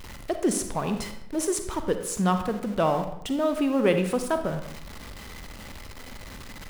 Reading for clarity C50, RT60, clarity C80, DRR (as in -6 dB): 8.0 dB, 0.75 s, 11.0 dB, 7.0 dB